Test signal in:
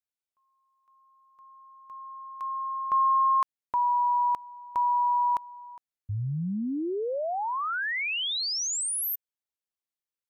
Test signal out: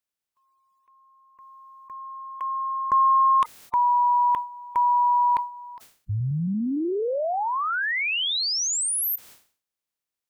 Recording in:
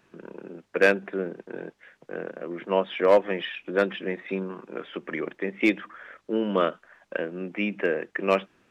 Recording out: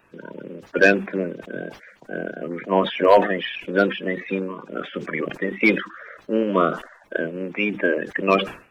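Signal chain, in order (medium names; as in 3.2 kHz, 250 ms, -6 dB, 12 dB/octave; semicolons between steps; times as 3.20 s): coarse spectral quantiser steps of 30 dB; decay stretcher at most 130 dB/s; trim +5 dB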